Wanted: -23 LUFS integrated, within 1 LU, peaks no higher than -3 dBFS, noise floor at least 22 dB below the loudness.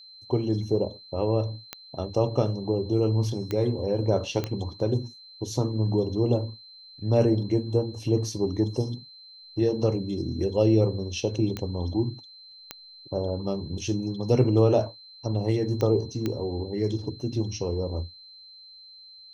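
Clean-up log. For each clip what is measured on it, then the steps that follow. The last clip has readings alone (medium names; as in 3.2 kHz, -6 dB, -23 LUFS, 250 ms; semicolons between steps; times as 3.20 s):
clicks found 7; steady tone 4.1 kHz; tone level -46 dBFS; loudness -27.0 LUFS; peak level -8.0 dBFS; loudness target -23.0 LUFS
-> de-click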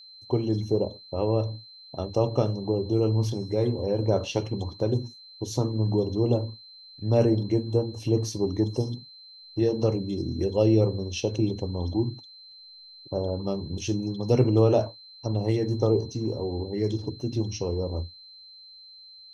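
clicks found 0; steady tone 4.1 kHz; tone level -46 dBFS
-> band-stop 4.1 kHz, Q 30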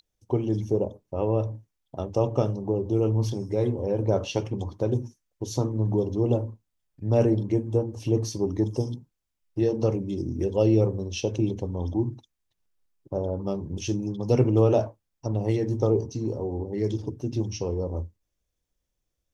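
steady tone not found; loudness -27.0 LUFS; peak level -8.0 dBFS; loudness target -23.0 LUFS
-> trim +4 dB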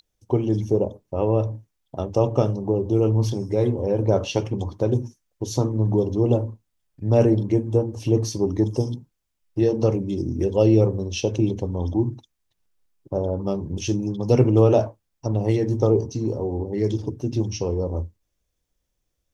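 loudness -23.0 LUFS; peak level -4.0 dBFS; noise floor -76 dBFS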